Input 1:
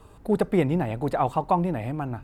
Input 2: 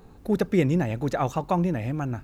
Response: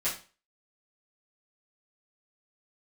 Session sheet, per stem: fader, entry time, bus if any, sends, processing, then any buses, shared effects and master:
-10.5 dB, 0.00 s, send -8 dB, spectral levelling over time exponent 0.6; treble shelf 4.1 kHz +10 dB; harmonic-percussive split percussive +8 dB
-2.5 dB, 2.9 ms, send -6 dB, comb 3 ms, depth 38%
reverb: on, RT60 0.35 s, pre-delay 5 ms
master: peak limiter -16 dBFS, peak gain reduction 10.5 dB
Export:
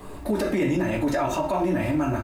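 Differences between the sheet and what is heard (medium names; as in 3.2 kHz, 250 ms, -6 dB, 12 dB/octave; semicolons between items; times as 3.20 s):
stem 1 -10.5 dB -> -18.5 dB; reverb return +8.0 dB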